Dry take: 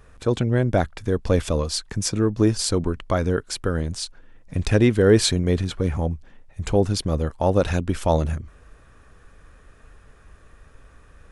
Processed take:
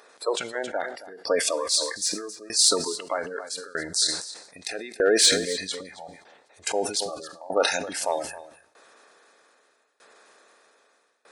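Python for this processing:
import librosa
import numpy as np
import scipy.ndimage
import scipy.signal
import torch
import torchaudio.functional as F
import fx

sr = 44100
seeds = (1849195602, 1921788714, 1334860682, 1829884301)

p1 = fx.bin_compress(x, sr, power=0.6)
p2 = fx.noise_reduce_blind(p1, sr, reduce_db=14)
p3 = scipy.signal.sosfilt(scipy.signal.butter(2, 580.0, 'highpass', fs=sr, output='sos'), p2)
p4 = fx.spec_gate(p3, sr, threshold_db=-20, keep='strong')
p5 = fx.high_shelf(p4, sr, hz=3700.0, db=6.5)
p6 = 10.0 ** (-11.5 / 20.0) * (np.abs((p5 / 10.0 ** (-11.5 / 20.0) + 3.0) % 4.0 - 2.0) - 1.0)
p7 = p5 + (p6 * librosa.db_to_amplitude(-12.0))
p8 = fx.tremolo_shape(p7, sr, shape='saw_down', hz=0.8, depth_pct=95)
p9 = p8 + 10.0 ** (-16.5 / 20.0) * np.pad(p8, (int(270 * sr / 1000.0), 0))[:len(p8)]
p10 = fx.rev_double_slope(p9, sr, seeds[0], early_s=0.81, late_s=3.5, knee_db=-25, drr_db=19.5)
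p11 = fx.sustainer(p10, sr, db_per_s=82.0)
y = p11 * librosa.db_to_amplitude(-1.0)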